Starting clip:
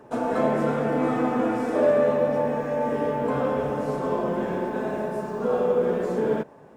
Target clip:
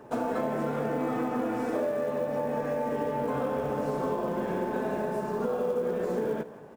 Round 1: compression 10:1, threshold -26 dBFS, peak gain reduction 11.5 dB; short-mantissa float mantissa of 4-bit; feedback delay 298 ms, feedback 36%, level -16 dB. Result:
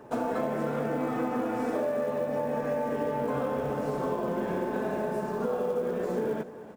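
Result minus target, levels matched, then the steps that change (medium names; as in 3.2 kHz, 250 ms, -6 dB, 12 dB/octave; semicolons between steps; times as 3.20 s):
echo 136 ms late
change: feedback delay 162 ms, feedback 36%, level -16 dB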